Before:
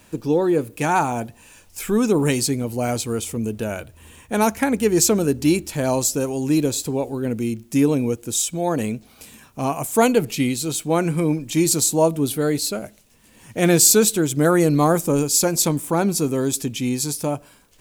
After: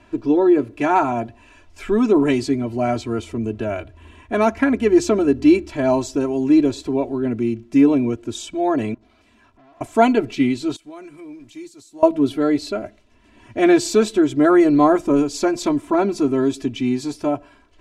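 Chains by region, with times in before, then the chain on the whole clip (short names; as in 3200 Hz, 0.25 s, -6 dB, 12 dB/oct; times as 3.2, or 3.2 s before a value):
8.94–9.81 compressor 5:1, threshold -38 dBFS + tube stage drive 52 dB, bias 0.7
10.76–12.03 G.711 law mismatch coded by mu + pre-emphasis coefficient 0.8 + compressor 3:1, threshold -37 dBFS
whole clip: Bessel low-pass 2400 Hz, order 2; comb 3 ms, depth 99%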